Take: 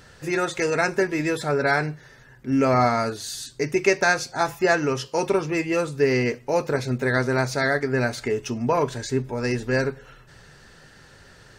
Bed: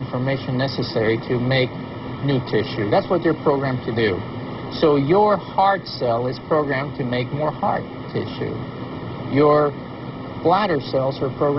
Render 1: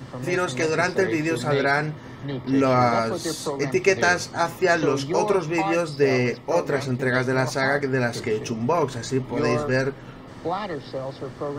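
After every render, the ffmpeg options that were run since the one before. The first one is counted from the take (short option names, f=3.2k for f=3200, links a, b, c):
-filter_complex "[1:a]volume=-10.5dB[a];[0:a][a]amix=inputs=2:normalize=0"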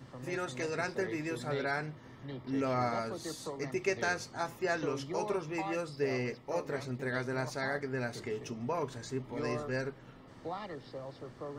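-af "volume=-13dB"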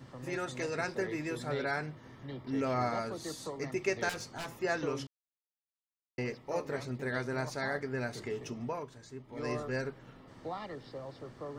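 -filter_complex "[0:a]asettb=1/sr,asplit=3[a][b][c];[a]atrim=end=4.094[d];[b]atrim=start=4.09:end=4.53,asetpts=PTS-STARTPTS,afade=t=in:d=0.004:c=qsin,afade=t=out:st=0.436:d=0.004:c=qsin,aeval=exprs='0.02*(abs(mod(val(0)/0.02+3,4)-2)-1)':c=same[e];[c]atrim=start=4.526[f];[d][e]acrossfade=d=0.004:c1=hsin:c2=qsin[g];[g][f]acrossfade=d=0.004:c1=qsin:c2=hsin,asplit=5[h][i][j][k][l];[h]atrim=end=5.07,asetpts=PTS-STARTPTS,afade=t=out:st=5.066:d=0.004:c=hsin[m];[i]atrim=start=5.07:end=6.18,asetpts=PTS-STARTPTS,volume=0[n];[j]atrim=start=6.18:end=8.86,asetpts=PTS-STARTPTS,afade=t=in:d=0.004:c=hsin,afade=t=out:st=2.44:d=0.24:silence=0.354813[o];[k]atrim=start=8.86:end=9.27,asetpts=PTS-STARTPTS,volume=-9dB[p];[l]atrim=start=9.27,asetpts=PTS-STARTPTS,afade=t=in:d=0.24:silence=0.354813[q];[m][n][o][p][q]concat=n=5:v=0:a=1"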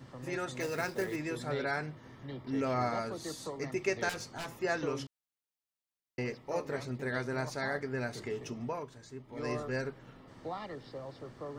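-filter_complex "[0:a]asettb=1/sr,asplit=3[a][b][c];[a]atrim=end=0.604[d];[b]atrim=start=0.6:end=1.16,asetpts=PTS-STARTPTS,afade=t=in:d=0.004:c=qsin,afade=t=out:st=0.556:d=0.004:c=qsin,acrusher=bits=4:mode=log:mix=0:aa=0.000001[e];[c]atrim=start=1.156[f];[d][e]acrossfade=d=0.004:c1=hsin:c2=qsin[g];[g][f]acrossfade=d=0.004:c1=qsin:c2=hsin"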